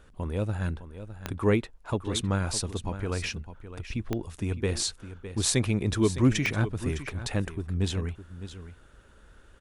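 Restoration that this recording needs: de-click; inverse comb 609 ms -12.5 dB

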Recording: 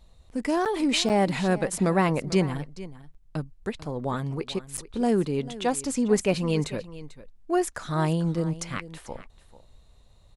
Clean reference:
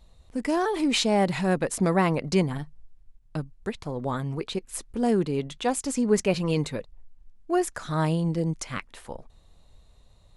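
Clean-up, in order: interpolate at 0.65/1.09/3.14/4.77 s, 7.6 ms; inverse comb 443 ms -16.5 dB

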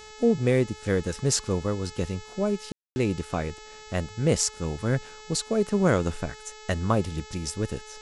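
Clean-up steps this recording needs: de-hum 430 Hz, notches 18; room tone fill 2.72–2.96 s

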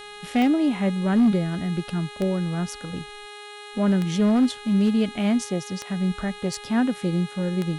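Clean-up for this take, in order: clip repair -13.5 dBFS; de-click; de-hum 414.4 Hz, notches 10; expander -33 dBFS, range -21 dB

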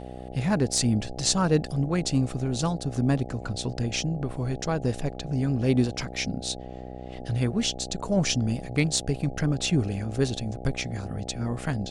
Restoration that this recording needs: clip repair -10 dBFS; de-hum 62.9 Hz, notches 13

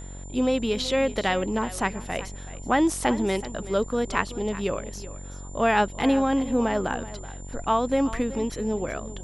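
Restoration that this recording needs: de-hum 46.6 Hz, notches 22; band-stop 7.2 kHz, Q 30; inverse comb 378 ms -15.5 dB

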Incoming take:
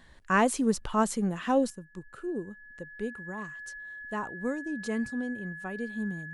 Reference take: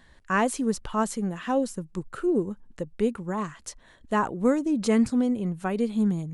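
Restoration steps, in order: band-stop 1.7 kHz, Q 30; trim 0 dB, from 1.70 s +10 dB

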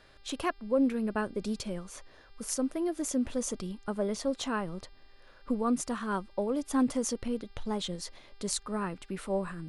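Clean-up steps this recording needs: de-hum 397.1 Hz, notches 13

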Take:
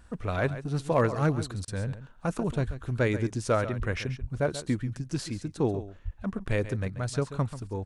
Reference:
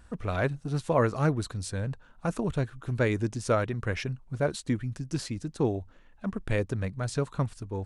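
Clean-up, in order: clip repair -15.5 dBFS; de-plosive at 2.66/3.78/4.20/6.04 s; interpolate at 1.65 s, 27 ms; inverse comb 136 ms -13 dB

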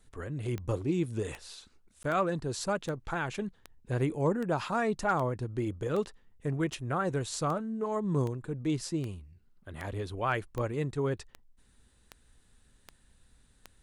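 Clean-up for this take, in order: clip repair -18 dBFS; de-click; interpolate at 2.03 s, 13 ms

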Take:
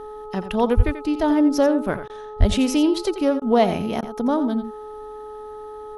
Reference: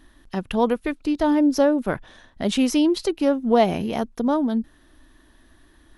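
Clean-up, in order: de-hum 425.5 Hz, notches 3; de-plosive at 0.76/2.39 s; interpolate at 2.08/3.40/4.01 s, 15 ms; inverse comb 87 ms -11.5 dB

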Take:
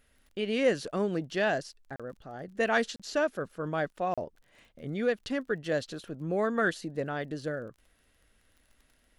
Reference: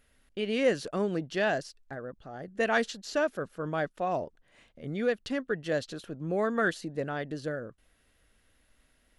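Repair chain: de-click; interpolate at 1.96/2.96/4.14 s, 36 ms

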